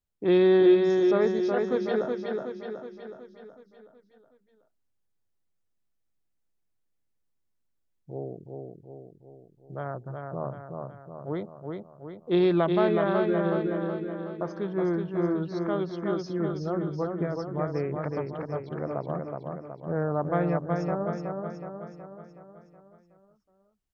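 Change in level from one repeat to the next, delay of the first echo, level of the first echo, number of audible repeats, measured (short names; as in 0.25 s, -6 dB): -5.5 dB, 0.371 s, -4.0 dB, 6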